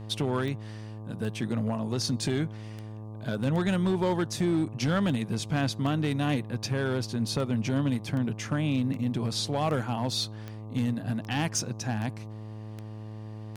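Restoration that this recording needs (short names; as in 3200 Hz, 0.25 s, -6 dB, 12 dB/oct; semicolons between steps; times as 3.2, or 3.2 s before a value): clip repair -20.5 dBFS; de-click; de-hum 108 Hz, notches 11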